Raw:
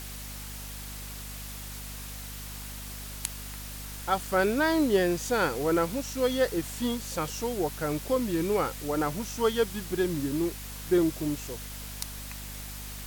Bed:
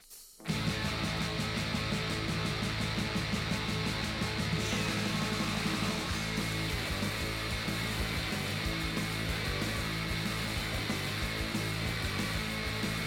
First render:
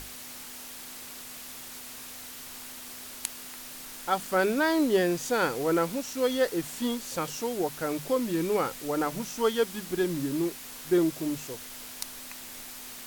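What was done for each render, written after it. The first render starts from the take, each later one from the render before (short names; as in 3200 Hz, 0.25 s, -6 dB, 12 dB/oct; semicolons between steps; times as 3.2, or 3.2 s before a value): notches 50/100/150/200 Hz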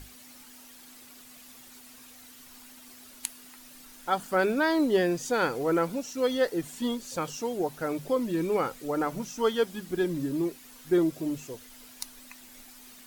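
denoiser 10 dB, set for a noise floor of -43 dBFS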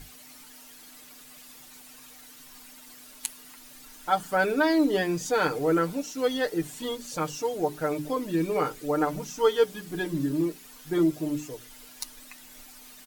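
notches 60/120/180/240/300/360/420 Hz; comb 6.6 ms, depth 69%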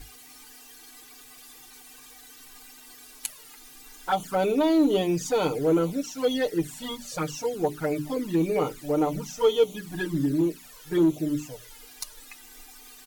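envelope flanger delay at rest 3 ms, full sweep at -22 dBFS; in parallel at -5.5 dB: hard clip -23.5 dBFS, distortion -11 dB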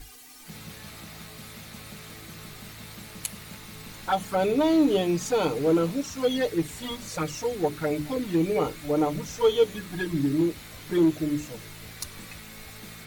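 add bed -11 dB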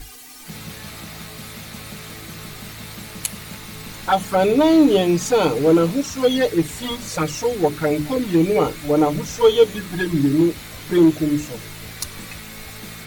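gain +7.5 dB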